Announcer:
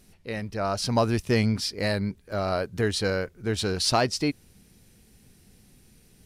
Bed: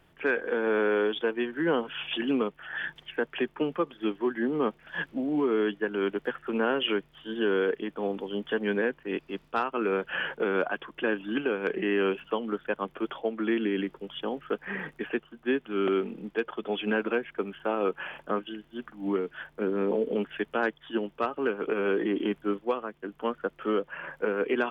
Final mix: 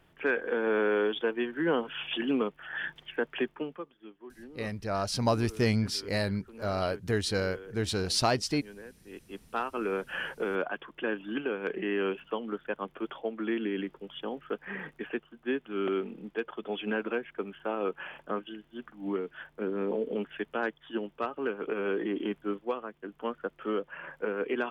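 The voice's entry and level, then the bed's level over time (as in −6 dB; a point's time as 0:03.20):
4.30 s, −3.5 dB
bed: 0:03.44 −1.5 dB
0:04.06 −20 dB
0:08.98 −20 dB
0:09.44 −4 dB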